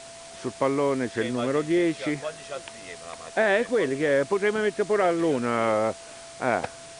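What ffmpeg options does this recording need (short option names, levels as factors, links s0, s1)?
-af "bandreject=f=670:w=30,afftdn=nr=27:nf=-43"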